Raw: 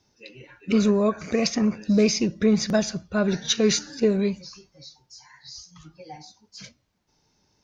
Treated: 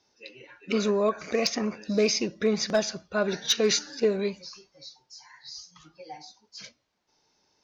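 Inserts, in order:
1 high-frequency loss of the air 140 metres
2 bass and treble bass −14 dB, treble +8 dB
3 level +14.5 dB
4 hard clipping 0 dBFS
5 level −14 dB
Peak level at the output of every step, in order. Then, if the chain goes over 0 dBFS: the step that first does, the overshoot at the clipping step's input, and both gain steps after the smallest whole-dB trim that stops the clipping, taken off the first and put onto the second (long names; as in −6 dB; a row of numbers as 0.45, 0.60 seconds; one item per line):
−9.5, −10.0, +4.5, 0.0, −14.0 dBFS
step 3, 4.5 dB
step 3 +9.5 dB, step 5 −9 dB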